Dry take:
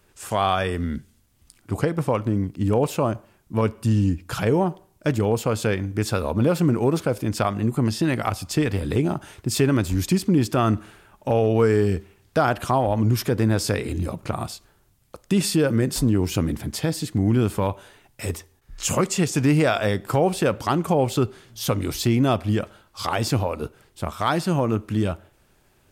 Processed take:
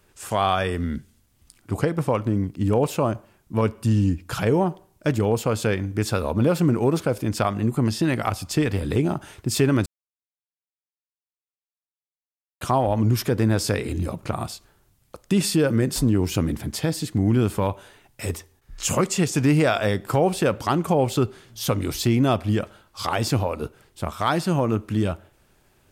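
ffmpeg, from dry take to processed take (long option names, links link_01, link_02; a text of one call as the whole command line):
ffmpeg -i in.wav -filter_complex "[0:a]asplit=3[link_01][link_02][link_03];[link_01]atrim=end=9.86,asetpts=PTS-STARTPTS,afade=type=out:start_time=9.856:duration=0.004:curve=hsin[link_04];[link_02]atrim=start=9.86:end=12.61,asetpts=PTS-STARTPTS,volume=0[link_05];[link_03]atrim=start=12.61,asetpts=PTS-STARTPTS,afade=type=in:duration=0.004:curve=hsin[link_06];[link_04][link_05][link_06]concat=n=3:v=0:a=1" out.wav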